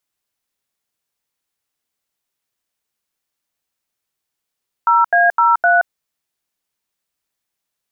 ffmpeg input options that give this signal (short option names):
-f lavfi -i "aevalsrc='0.251*clip(min(mod(t,0.256),0.175-mod(t,0.256))/0.002,0,1)*(eq(floor(t/0.256),0)*(sin(2*PI*941*mod(t,0.256))+sin(2*PI*1336*mod(t,0.256)))+eq(floor(t/0.256),1)*(sin(2*PI*697*mod(t,0.256))+sin(2*PI*1633*mod(t,0.256)))+eq(floor(t/0.256),2)*(sin(2*PI*941*mod(t,0.256))+sin(2*PI*1336*mod(t,0.256)))+eq(floor(t/0.256),3)*(sin(2*PI*697*mod(t,0.256))+sin(2*PI*1477*mod(t,0.256))))':d=1.024:s=44100"